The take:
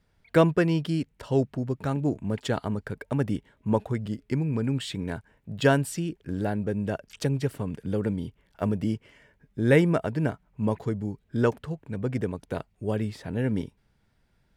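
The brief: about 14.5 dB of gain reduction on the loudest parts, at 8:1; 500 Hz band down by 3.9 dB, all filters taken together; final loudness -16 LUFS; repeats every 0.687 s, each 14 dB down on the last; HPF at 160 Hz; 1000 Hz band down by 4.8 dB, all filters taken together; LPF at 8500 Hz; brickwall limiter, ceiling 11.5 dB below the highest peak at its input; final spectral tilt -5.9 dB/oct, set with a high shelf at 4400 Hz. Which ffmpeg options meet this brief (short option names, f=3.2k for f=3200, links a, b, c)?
-af "highpass=160,lowpass=8.5k,equalizer=f=500:t=o:g=-3.5,equalizer=f=1k:t=o:g=-5.5,highshelf=f=4.4k:g=4.5,acompressor=threshold=-32dB:ratio=8,alimiter=level_in=7dB:limit=-24dB:level=0:latency=1,volume=-7dB,aecho=1:1:687|1374:0.2|0.0399,volume=26dB"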